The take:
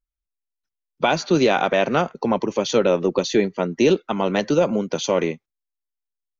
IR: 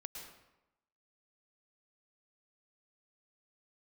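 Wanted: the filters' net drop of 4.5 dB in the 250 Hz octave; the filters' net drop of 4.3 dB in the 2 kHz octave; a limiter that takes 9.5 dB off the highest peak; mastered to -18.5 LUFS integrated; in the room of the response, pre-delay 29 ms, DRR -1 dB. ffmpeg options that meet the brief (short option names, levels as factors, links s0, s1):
-filter_complex "[0:a]equalizer=f=250:t=o:g=-6.5,equalizer=f=2000:t=o:g=-6,alimiter=limit=0.141:level=0:latency=1,asplit=2[s0][s1];[1:a]atrim=start_sample=2205,adelay=29[s2];[s1][s2]afir=irnorm=-1:irlink=0,volume=1.68[s3];[s0][s3]amix=inputs=2:normalize=0,volume=2.11"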